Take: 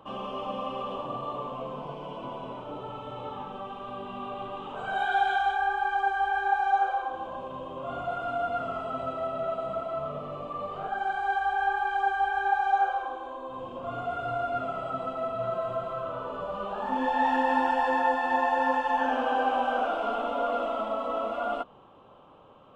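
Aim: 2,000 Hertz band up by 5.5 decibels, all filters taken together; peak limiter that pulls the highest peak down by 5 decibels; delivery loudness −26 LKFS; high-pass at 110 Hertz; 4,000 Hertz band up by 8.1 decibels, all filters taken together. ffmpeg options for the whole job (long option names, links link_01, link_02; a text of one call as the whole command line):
ffmpeg -i in.wav -af "highpass=110,equalizer=frequency=2000:width_type=o:gain=6,equalizer=frequency=4000:width_type=o:gain=8.5,volume=2.5dB,alimiter=limit=-14dB:level=0:latency=1" out.wav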